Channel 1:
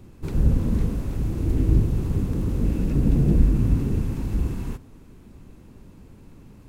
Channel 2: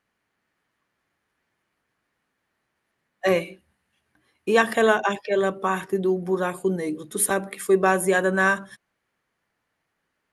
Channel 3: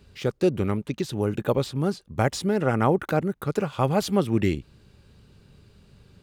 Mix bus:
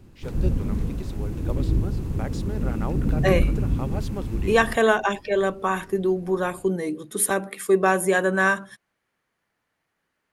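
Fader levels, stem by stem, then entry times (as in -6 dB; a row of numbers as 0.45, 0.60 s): -3.5, 0.0, -11.5 dB; 0.00, 0.00, 0.00 s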